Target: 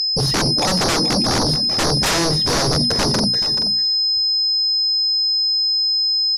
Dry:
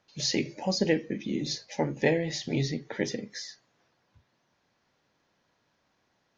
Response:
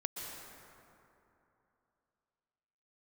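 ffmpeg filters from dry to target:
-filter_complex "[0:a]agate=range=0.0224:threshold=0.00251:ratio=3:detection=peak,aemphasis=mode=reproduction:type=bsi,afwtdn=0.0224,highshelf=f=4100:g=7,bandreject=f=60:t=h:w=6,bandreject=f=120:t=h:w=6,bandreject=f=180:t=h:w=6,bandreject=f=240:t=h:w=6,bandreject=f=300:t=h:w=6,asplit=2[s0][s1];[s1]acompressor=threshold=0.02:ratio=6,volume=0.794[s2];[s0][s2]amix=inputs=2:normalize=0,asoftclip=type=tanh:threshold=0.168,aeval=exprs='val(0)+0.0178*sin(2*PI*5100*n/s)':c=same,aeval=exprs='0.188*sin(PI/2*5.62*val(0)/0.188)':c=same,aecho=1:1:431:0.282[s3];[1:a]atrim=start_sample=2205,atrim=end_sample=3087,asetrate=29988,aresample=44100[s4];[s3][s4]afir=irnorm=-1:irlink=0,aresample=32000,aresample=44100"

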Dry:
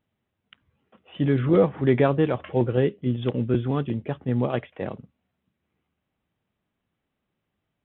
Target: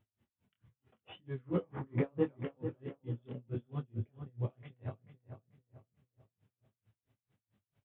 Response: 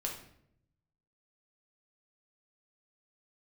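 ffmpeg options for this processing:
-filter_complex "[0:a]asoftclip=type=tanh:threshold=0.355,acompressor=threshold=0.0224:ratio=3,alimiter=level_in=2.11:limit=0.0631:level=0:latency=1:release=482,volume=0.473,flanger=delay=3:depth=7.1:regen=-39:speed=0.35:shape=sinusoidal,equalizer=f=110:w=2.1:g=13.5,flanger=delay=19.5:depth=6.9:speed=0.79,asplit=3[s0][s1][s2];[s0]afade=t=out:st=1.39:d=0.02[s3];[s1]equalizer=f=125:t=o:w=1:g=3,equalizer=f=250:t=o:w=1:g=7,equalizer=f=500:t=o:w=1:g=6,equalizer=f=1000:t=o:w=1:g=9,equalizer=f=2000:t=o:w=1:g=5,afade=t=in:st=1.39:d=0.02,afade=t=out:st=2.35:d=0.02[s4];[s2]afade=t=in:st=2.35:d=0.02[s5];[s3][s4][s5]amix=inputs=3:normalize=0,asplit=2[s6][s7];[s7]adelay=439,lowpass=f=2100:p=1,volume=0.376,asplit=2[s8][s9];[s9]adelay=439,lowpass=f=2100:p=1,volume=0.41,asplit=2[s10][s11];[s11]adelay=439,lowpass=f=2100:p=1,volume=0.41,asplit=2[s12][s13];[s13]adelay=439,lowpass=f=2100:p=1,volume=0.41,asplit=2[s14][s15];[s15]adelay=439,lowpass=f=2100:p=1,volume=0.41[s16];[s6][s8][s10][s12][s14][s16]amix=inputs=6:normalize=0,aeval=exprs='val(0)*pow(10,-36*(0.5-0.5*cos(2*PI*4.5*n/s))/20)':c=same,volume=2.37"

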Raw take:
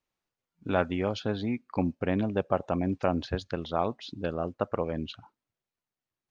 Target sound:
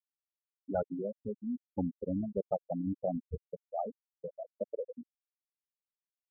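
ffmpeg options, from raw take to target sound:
-af "highshelf=f=3800:t=q:w=3:g=-6,afwtdn=0.02,afftfilt=real='re*gte(hypot(re,im),0.2)':imag='im*gte(hypot(re,im),0.2)':win_size=1024:overlap=0.75,volume=0.596"

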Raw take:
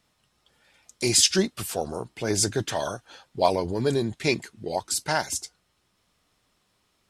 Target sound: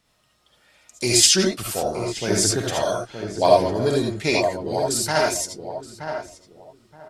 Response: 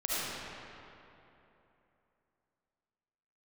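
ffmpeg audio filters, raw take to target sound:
-filter_complex "[0:a]asplit=2[s0][s1];[s1]adelay=923,lowpass=f=1300:p=1,volume=0.447,asplit=2[s2][s3];[s3]adelay=923,lowpass=f=1300:p=1,volume=0.22,asplit=2[s4][s5];[s5]adelay=923,lowpass=f=1300:p=1,volume=0.22[s6];[s0][s2][s4][s6]amix=inputs=4:normalize=0[s7];[1:a]atrim=start_sample=2205,atrim=end_sample=3969[s8];[s7][s8]afir=irnorm=-1:irlink=0,volume=1.33"

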